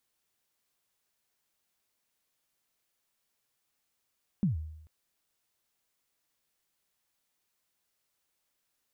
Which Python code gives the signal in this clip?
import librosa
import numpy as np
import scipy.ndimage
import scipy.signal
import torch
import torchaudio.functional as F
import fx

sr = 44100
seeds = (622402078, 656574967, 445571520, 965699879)

y = fx.drum_kick(sr, seeds[0], length_s=0.44, level_db=-21.5, start_hz=220.0, end_hz=78.0, sweep_ms=133.0, decay_s=0.83, click=False)